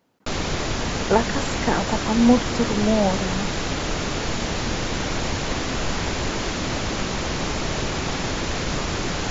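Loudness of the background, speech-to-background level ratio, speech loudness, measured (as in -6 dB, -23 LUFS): -25.5 LUFS, 3.0 dB, -22.5 LUFS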